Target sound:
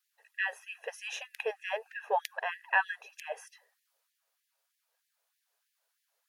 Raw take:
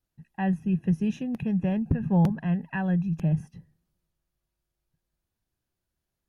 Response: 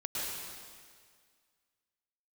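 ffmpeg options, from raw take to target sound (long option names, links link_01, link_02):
-af "afftfilt=real='re*gte(b*sr/1024,400*pow(1700/400,0.5+0.5*sin(2*PI*3.2*pts/sr)))':imag='im*gte(b*sr/1024,400*pow(1700/400,0.5+0.5*sin(2*PI*3.2*pts/sr)))':win_size=1024:overlap=0.75,volume=8.5dB"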